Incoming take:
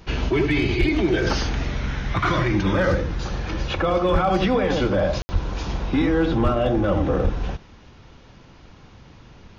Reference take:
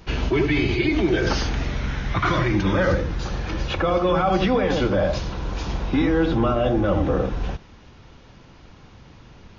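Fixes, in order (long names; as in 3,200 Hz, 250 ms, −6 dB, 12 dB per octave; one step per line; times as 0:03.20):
clipped peaks rebuilt −12 dBFS
high-pass at the plosives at 0:00.79/0:04.12/0:05.32/0:06.43/0:07.23
ambience match 0:05.22–0:05.29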